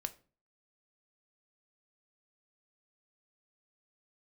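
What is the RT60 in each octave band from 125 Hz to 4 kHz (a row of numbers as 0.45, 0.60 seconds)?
0.55, 0.50, 0.40, 0.35, 0.30, 0.30 seconds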